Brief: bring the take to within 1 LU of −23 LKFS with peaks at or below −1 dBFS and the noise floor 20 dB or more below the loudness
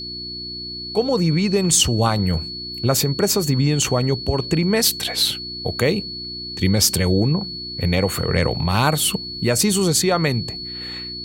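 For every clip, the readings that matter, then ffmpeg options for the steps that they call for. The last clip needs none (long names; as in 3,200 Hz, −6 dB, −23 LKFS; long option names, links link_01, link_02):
mains hum 60 Hz; hum harmonics up to 360 Hz; level of the hum −38 dBFS; interfering tone 4,400 Hz; level of the tone −29 dBFS; integrated loudness −19.5 LKFS; sample peak −3.5 dBFS; target loudness −23.0 LKFS
→ -af "bandreject=frequency=60:width_type=h:width=4,bandreject=frequency=120:width_type=h:width=4,bandreject=frequency=180:width_type=h:width=4,bandreject=frequency=240:width_type=h:width=4,bandreject=frequency=300:width_type=h:width=4,bandreject=frequency=360:width_type=h:width=4"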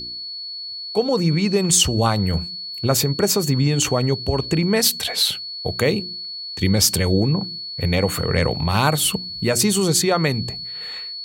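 mains hum none found; interfering tone 4,400 Hz; level of the tone −29 dBFS
→ -af "bandreject=frequency=4400:width=30"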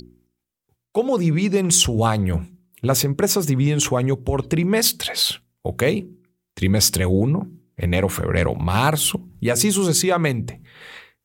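interfering tone none found; integrated loudness −20.0 LKFS; sample peak −3.0 dBFS; target loudness −23.0 LKFS
→ -af "volume=-3dB"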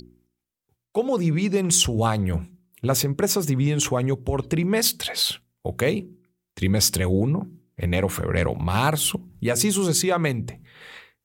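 integrated loudness −23.0 LKFS; sample peak −6.0 dBFS; background noise floor −82 dBFS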